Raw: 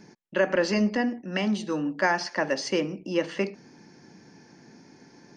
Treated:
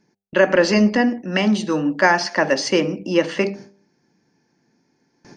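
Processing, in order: gate with hold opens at -39 dBFS; de-hum 99.12 Hz, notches 8; gain +8.5 dB

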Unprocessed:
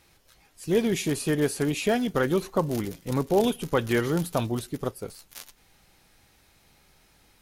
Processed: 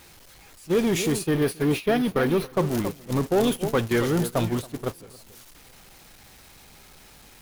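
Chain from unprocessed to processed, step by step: zero-crossing step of -30 dBFS; 1.27–2.53 bell 7300 Hz -15 dB 0.49 oct; echo with dull and thin repeats by turns 0.277 s, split 1400 Hz, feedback 50%, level -9.5 dB; sample leveller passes 1; gate -22 dBFS, range -16 dB; gain -2.5 dB

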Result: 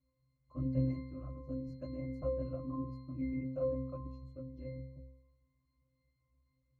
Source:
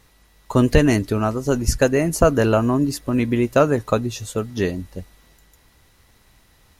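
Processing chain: whisperiser; octave resonator C, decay 0.8 s; gain -5 dB

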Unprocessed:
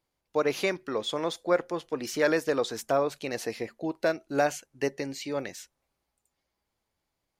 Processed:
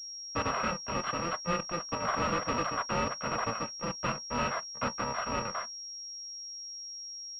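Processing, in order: FFT order left unsorted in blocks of 128 samples; gate with hold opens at -55 dBFS; three-band isolator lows -22 dB, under 520 Hz, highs -23 dB, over 2100 Hz; sample leveller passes 3; sine folder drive 3 dB, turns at -26 dBFS; small resonant body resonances 230/960 Hz, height 12 dB, ringing for 30 ms; reverb, pre-delay 4 ms, DRR 16.5 dB; pulse-width modulation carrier 5600 Hz; gain -1.5 dB

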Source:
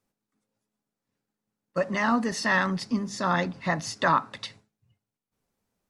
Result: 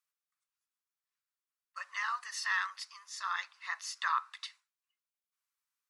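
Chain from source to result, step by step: Chebyshev high-pass 1100 Hz, order 4; high shelf 8700 Hz +4 dB; gain -6.5 dB

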